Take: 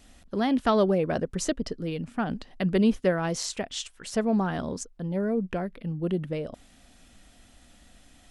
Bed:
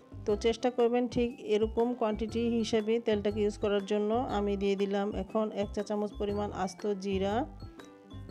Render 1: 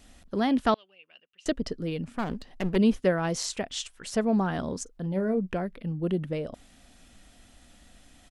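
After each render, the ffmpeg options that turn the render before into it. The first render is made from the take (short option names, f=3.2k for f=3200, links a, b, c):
-filter_complex "[0:a]asettb=1/sr,asplit=3[a][b][c];[a]atrim=end=0.744[d];[b]atrim=start=0.74:end=1.46,asetpts=PTS-STARTPTS,afade=t=in:d=0.004:c=qsin,afade=t=out:st=0.716:d=0.004:c=qsin,bandpass=f=2.8k:t=q:w=16[e];[c]atrim=start=1.456[f];[d][e]acrossfade=d=0.004:c1=hsin:c2=qsin[g];[g][f]acrossfade=d=0.004:c1=qsin:c2=hsin,asplit=3[h][i][j];[h]afade=t=out:st=2.04:d=0.02[k];[i]aeval=exprs='clip(val(0),-1,0.0168)':c=same,afade=t=in:st=2.04:d=0.02,afade=t=out:st=2.75:d=0.02[l];[j]afade=t=in:st=2.75:d=0.02[m];[k][l][m]amix=inputs=3:normalize=0,asplit=3[n][o][p];[n]afade=t=out:st=4.86:d=0.02[q];[o]asplit=2[r][s];[s]adelay=37,volume=-13dB[t];[r][t]amix=inputs=2:normalize=0,afade=t=in:st=4.86:d=0.02,afade=t=out:st=5.37:d=0.02[u];[p]afade=t=in:st=5.37:d=0.02[v];[q][u][v]amix=inputs=3:normalize=0"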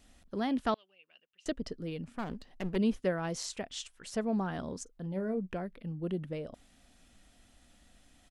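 -af "volume=-7dB"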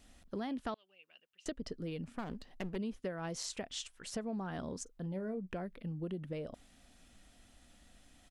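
-af "acompressor=threshold=-36dB:ratio=6"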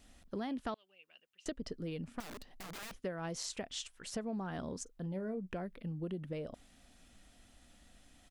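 -filter_complex "[0:a]asettb=1/sr,asplit=3[a][b][c];[a]atrim=end=2.204[d];[b]atrim=start=2.2:end=2.95,asetpts=PTS-STARTPTS,afade=t=in:d=0.004:c=qsin,afade=t=out:st=0.746:d=0.004:c=qsin,aeval=exprs='(mod(119*val(0)+1,2)-1)/119':c=same[e];[c]atrim=start=2.946[f];[d][e]acrossfade=d=0.004:c1=hsin:c2=qsin[g];[g][f]acrossfade=d=0.004:c1=qsin:c2=hsin"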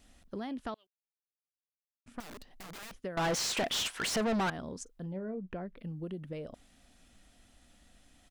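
-filter_complex "[0:a]asettb=1/sr,asplit=3[a][b][c];[a]atrim=end=3.174[d];[b]atrim=start=3.17:end=4.5,asetpts=PTS-STARTPTS,afade=t=in:d=0.004:c=qsin,afade=t=out:st=1.326:d=0.004:c=qsin,asplit=2[e][f];[f]highpass=f=720:p=1,volume=35dB,asoftclip=type=tanh:threshold=-23dB[g];[e][g]amix=inputs=2:normalize=0,lowpass=f=4.2k:p=1,volume=-6dB[h];[c]atrim=start=4.496[i];[d][h]acrossfade=d=0.004:c1=hsin:c2=qsin[j];[j][i]acrossfade=d=0.004:c1=qsin:c2=hsin,asettb=1/sr,asplit=3[k][l][m];[k]atrim=end=5.124[n];[l]atrim=start=5.12:end=5.77,asetpts=PTS-STARTPTS,afade=t=in:d=0.004:c=qsin,afade=t=out:st=0.646:d=0.004:c=qsin,aemphasis=mode=reproduction:type=75fm[o];[m]atrim=start=5.766[p];[n][o]acrossfade=d=0.004:c1=hsin:c2=qsin[q];[q][p]acrossfade=d=0.004:c1=qsin:c2=hsin,asplit=3[r][s][t];[r]atrim=end=0.87,asetpts=PTS-STARTPTS,afade=t=out:st=0.866:d=0.004:c=hsin[u];[s]atrim=start=0.87:end=2.06,asetpts=PTS-STARTPTS,volume=0[v];[t]atrim=start=2.06,asetpts=PTS-STARTPTS,afade=t=in:d=0.004:c=hsin[w];[u][v][w]concat=n=3:v=0:a=1"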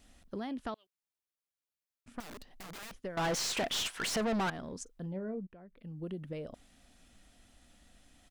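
-filter_complex "[0:a]asettb=1/sr,asplit=3[a][b][c];[a]atrim=end=3.024[d];[b]atrim=start=3.02:end=4.73,asetpts=PTS-STARTPTS,afade=t=in:d=0.004:c=qsin,afade=t=out:st=1.706:d=0.004:c=qsin,aeval=exprs='if(lt(val(0),0),0.708*val(0),val(0))':c=same[e];[c]atrim=start=4.726[f];[d][e]acrossfade=d=0.004:c1=hsin:c2=qsin[g];[g][f]acrossfade=d=0.004:c1=qsin:c2=hsin,asplit=2[h][i];[h]atrim=end=5.47,asetpts=PTS-STARTPTS,afade=t=out:st=5.466:d=0.004:c=hsin:silence=0.158489[j];[i]atrim=start=5.47,asetpts=PTS-STARTPTS,afade=t=in:d=0.6:c=qua:silence=0.158489[k];[j][k]concat=n=2:v=0:a=1"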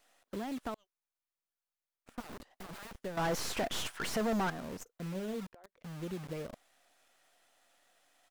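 -filter_complex "[0:a]acrossover=split=440|1900[a][b][c];[a]acrusher=bits=7:mix=0:aa=0.000001[d];[c]aeval=exprs='max(val(0),0)':c=same[e];[d][b][e]amix=inputs=3:normalize=0"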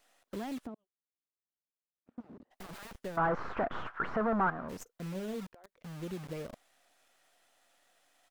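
-filter_complex "[0:a]asplit=3[a][b][c];[a]afade=t=out:st=0.65:d=0.02[d];[b]bandpass=f=230:t=q:w=1.1,afade=t=in:st=0.65:d=0.02,afade=t=out:st=2.5:d=0.02[e];[c]afade=t=in:st=2.5:d=0.02[f];[d][e][f]amix=inputs=3:normalize=0,asplit=3[g][h][i];[g]afade=t=out:st=3.16:d=0.02[j];[h]lowpass=f=1.3k:t=q:w=2.7,afade=t=in:st=3.16:d=0.02,afade=t=out:st=4.68:d=0.02[k];[i]afade=t=in:st=4.68:d=0.02[l];[j][k][l]amix=inputs=3:normalize=0"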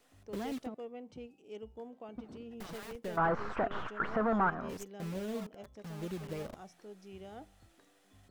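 -filter_complex "[1:a]volume=-18dB[a];[0:a][a]amix=inputs=2:normalize=0"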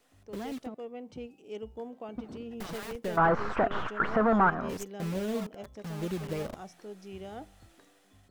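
-af "dynaudnorm=f=600:g=3:m=6dB"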